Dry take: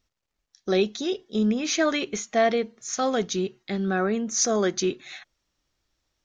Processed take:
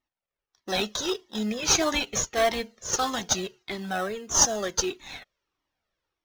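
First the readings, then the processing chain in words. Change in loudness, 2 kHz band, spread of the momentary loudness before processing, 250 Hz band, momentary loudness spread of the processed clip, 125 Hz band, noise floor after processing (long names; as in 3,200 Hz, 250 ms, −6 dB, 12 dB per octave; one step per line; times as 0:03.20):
−1.0 dB, −0.5 dB, 8 LU, −7.0 dB, 14 LU, −5.0 dB, below −85 dBFS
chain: low-pass that shuts in the quiet parts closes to 1,900 Hz, open at −23 dBFS
RIAA equalisation recording
automatic gain control gain up to 4 dB
in parallel at −7.5 dB: sample-rate reduction 2,300 Hz, jitter 0%
on the sum: flanger whose copies keep moving one way falling 1.6 Hz
level −1 dB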